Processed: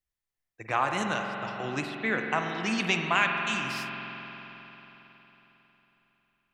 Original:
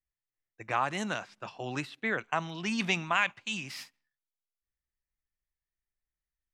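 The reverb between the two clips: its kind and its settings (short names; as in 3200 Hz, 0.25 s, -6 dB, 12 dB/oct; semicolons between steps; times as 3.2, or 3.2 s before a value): spring tank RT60 3.9 s, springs 45 ms, chirp 35 ms, DRR 2.5 dB; gain +2 dB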